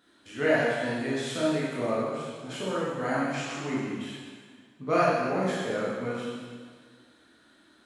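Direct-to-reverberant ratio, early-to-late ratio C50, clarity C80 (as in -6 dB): -8.0 dB, -2.5 dB, 0.5 dB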